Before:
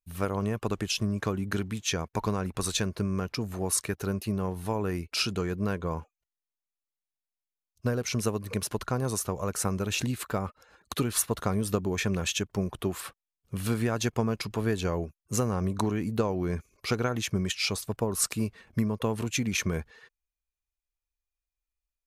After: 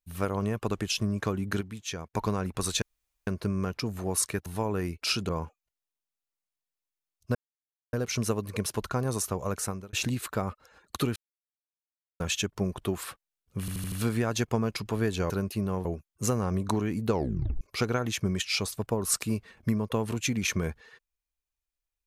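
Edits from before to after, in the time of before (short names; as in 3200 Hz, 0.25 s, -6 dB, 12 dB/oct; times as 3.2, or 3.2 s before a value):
1.61–2.14 gain -6.5 dB
2.82 insert room tone 0.45 s
4.01–4.56 move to 14.95
5.39–5.84 cut
7.9 insert silence 0.58 s
9.51–9.9 fade out
11.13–12.17 mute
13.57 stutter 0.08 s, 5 plays
16.2 tape stop 0.51 s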